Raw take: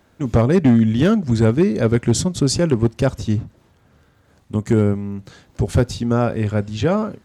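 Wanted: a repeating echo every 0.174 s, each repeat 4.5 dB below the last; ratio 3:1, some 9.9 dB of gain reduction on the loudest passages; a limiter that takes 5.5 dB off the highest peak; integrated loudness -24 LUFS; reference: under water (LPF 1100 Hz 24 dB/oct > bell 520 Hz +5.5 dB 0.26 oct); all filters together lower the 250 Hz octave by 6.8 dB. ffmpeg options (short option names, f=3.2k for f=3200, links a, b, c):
-af "equalizer=f=250:t=o:g=-9,acompressor=threshold=-27dB:ratio=3,alimiter=limit=-22dB:level=0:latency=1,lowpass=f=1.1k:w=0.5412,lowpass=f=1.1k:w=1.3066,equalizer=f=520:t=o:w=0.26:g=5.5,aecho=1:1:174|348|522|696|870|1044|1218|1392|1566:0.596|0.357|0.214|0.129|0.0772|0.0463|0.0278|0.0167|0.01,volume=6dB"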